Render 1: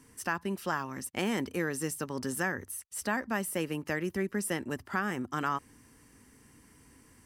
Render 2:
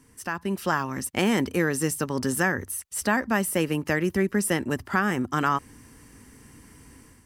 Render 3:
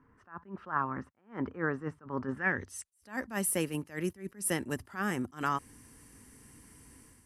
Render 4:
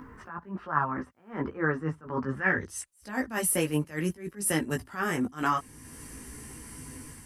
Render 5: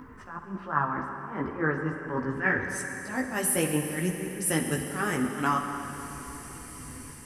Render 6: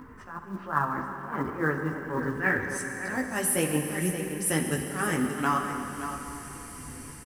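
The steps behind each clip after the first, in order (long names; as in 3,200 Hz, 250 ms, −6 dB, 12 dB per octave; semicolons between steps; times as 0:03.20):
low-shelf EQ 130 Hz +4.5 dB; automatic gain control gain up to 7.5 dB
low-pass filter sweep 1,300 Hz → 11,000 Hz, 0:02.32–0:02.90; level that may rise only so fast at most 210 dB per second; level −7 dB
in parallel at +3 dB: upward compression, threshold −35 dBFS; on the sum: multi-voice chorus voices 4, 0.45 Hz, delay 16 ms, depth 4 ms
convolution reverb RT60 3.7 s, pre-delay 43 ms, DRR 4.5 dB
floating-point word with a short mantissa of 4 bits; single-tap delay 573 ms −10.5 dB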